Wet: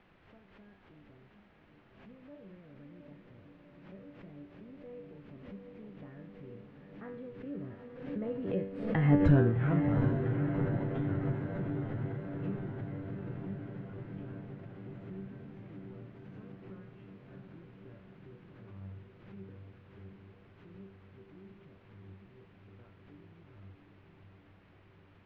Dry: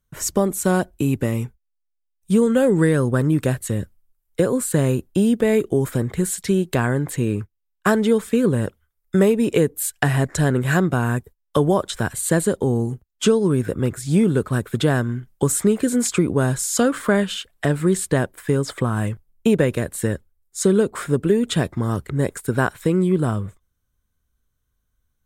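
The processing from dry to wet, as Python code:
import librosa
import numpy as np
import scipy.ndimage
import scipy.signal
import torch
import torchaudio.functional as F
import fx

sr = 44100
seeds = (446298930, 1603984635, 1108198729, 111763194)

p1 = fx.doppler_pass(x, sr, speed_mps=37, closest_m=6.1, pass_at_s=9.24)
p2 = fx.low_shelf(p1, sr, hz=90.0, db=6.5)
p3 = fx.comb_fb(p2, sr, f0_hz=97.0, decay_s=0.51, harmonics='all', damping=0.0, mix_pct=90)
p4 = p3 + fx.echo_diffused(p3, sr, ms=753, feedback_pct=70, wet_db=-5.5, dry=0)
p5 = fx.quant_dither(p4, sr, seeds[0], bits=10, dither='triangular')
p6 = scipy.signal.sosfilt(scipy.signal.butter(4, 2600.0, 'lowpass', fs=sr, output='sos'), p5)
p7 = fx.low_shelf(p6, sr, hz=450.0, db=11.5)
y = fx.pre_swell(p7, sr, db_per_s=64.0)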